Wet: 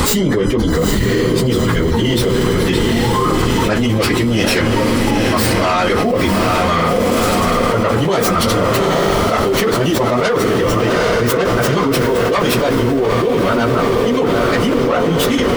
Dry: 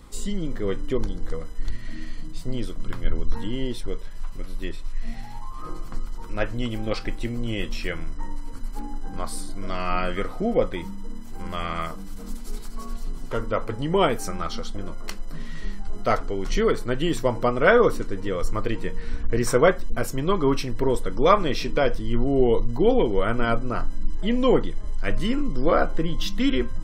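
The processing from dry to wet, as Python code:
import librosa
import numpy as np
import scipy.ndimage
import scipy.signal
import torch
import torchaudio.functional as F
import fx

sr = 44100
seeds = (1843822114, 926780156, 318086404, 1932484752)

p1 = fx.tracing_dist(x, sr, depth_ms=0.3)
p2 = scipy.signal.sosfilt(scipy.signal.butter(2, 72.0, 'highpass', fs=sr, output='sos'), p1)
p3 = fx.hum_notches(p2, sr, base_hz=50, count=8)
p4 = fx.chorus_voices(p3, sr, voices=2, hz=1.2, base_ms=26, depth_ms=3.0, mix_pct=25)
p5 = fx.stretch_vocoder_free(p4, sr, factor=0.58)
p6 = p5 + fx.echo_diffused(p5, sr, ms=850, feedback_pct=69, wet_db=-8.0, dry=0)
p7 = fx.env_flatten(p6, sr, amount_pct=100)
y = F.gain(torch.from_numpy(p7), 5.0).numpy()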